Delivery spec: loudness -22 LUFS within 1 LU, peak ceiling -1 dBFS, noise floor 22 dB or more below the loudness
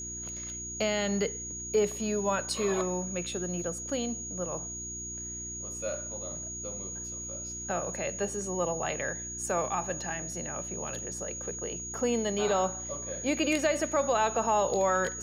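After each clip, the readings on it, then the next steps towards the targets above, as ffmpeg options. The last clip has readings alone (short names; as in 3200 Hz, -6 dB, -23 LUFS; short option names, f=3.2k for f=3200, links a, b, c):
hum 60 Hz; harmonics up to 360 Hz; hum level -43 dBFS; steady tone 6700 Hz; tone level -37 dBFS; loudness -31.0 LUFS; peak -14.5 dBFS; loudness target -22.0 LUFS
-> -af "bandreject=f=60:t=h:w=4,bandreject=f=120:t=h:w=4,bandreject=f=180:t=h:w=4,bandreject=f=240:t=h:w=4,bandreject=f=300:t=h:w=4,bandreject=f=360:t=h:w=4"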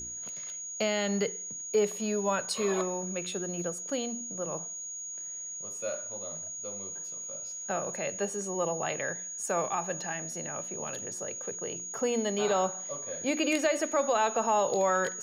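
hum none; steady tone 6700 Hz; tone level -37 dBFS
-> -af "bandreject=f=6.7k:w=30"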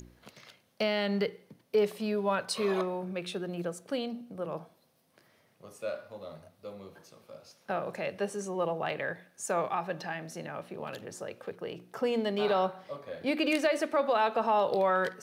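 steady tone none; loudness -32.0 LUFS; peak -15.5 dBFS; loudness target -22.0 LUFS
-> -af "volume=10dB"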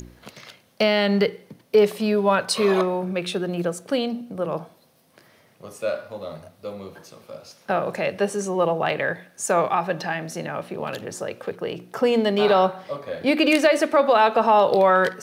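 loudness -22.0 LUFS; peak -5.5 dBFS; noise floor -58 dBFS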